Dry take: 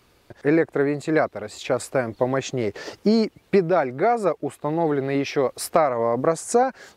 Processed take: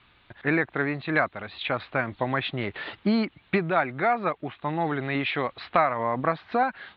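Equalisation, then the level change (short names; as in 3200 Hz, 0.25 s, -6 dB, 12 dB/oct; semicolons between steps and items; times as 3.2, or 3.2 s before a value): steep low-pass 3900 Hz 72 dB/oct; low shelf 320 Hz -7 dB; bell 470 Hz -13.5 dB 1.3 oct; +5.0 dB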